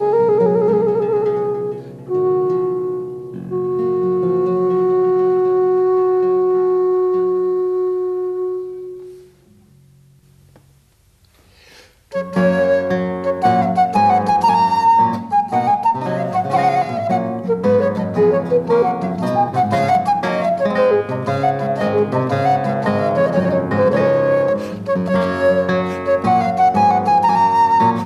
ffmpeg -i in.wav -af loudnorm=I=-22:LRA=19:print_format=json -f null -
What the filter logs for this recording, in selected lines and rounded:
"input_i" : "-16.3",
"input_tp" : "-3.4",
"input_lra" : "5.0",
"input_thresh" : "-26.9",